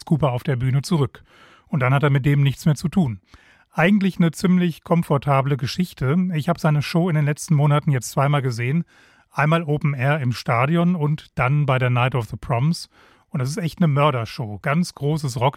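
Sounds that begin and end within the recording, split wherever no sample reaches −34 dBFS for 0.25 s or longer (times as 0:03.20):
0:01.73–0:03.35
0:03.77–0:08.82
0:09.37–0:12.84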